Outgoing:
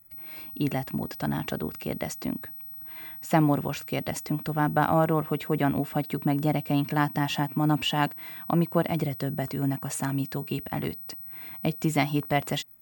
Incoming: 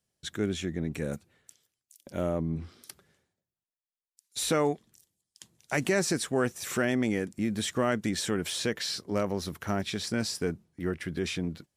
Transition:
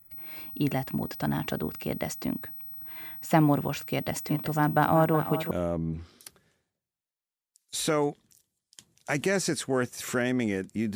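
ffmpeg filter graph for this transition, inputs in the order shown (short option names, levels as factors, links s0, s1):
-filter_complex "[0:a]asplit=3[s0][s1][s2];[s0]afade=t=out:st=4.17:d=0.02[s3];[s1]aecho=1:1:372:0.282,afade=t=in:st=4.17:d=0.02,afade=t=out:st=5.51:d=0.02[s4];[s2]afade=t=in:st=5.51:d=0.02[s5];[s3][s4][s5]amix=inputs=3:normalize=0,apad=whole_dur=10.95,atrim=end=10.95,atrim=end=5.512[s6];[1:a]atrim=start=2.138:end=7.58[s7];[s6][s7]acrossfade=d=0.004:c1=hsin:c2=hsin"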